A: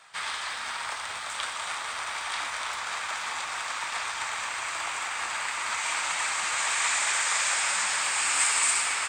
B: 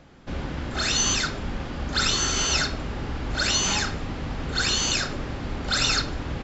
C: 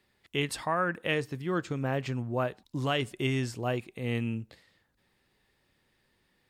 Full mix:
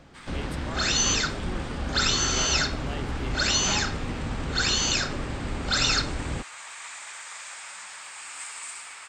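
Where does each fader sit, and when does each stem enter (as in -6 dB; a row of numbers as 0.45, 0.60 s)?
-14.0, -0.5, -10.5 dB; 0.00, 0.00, 0.00 s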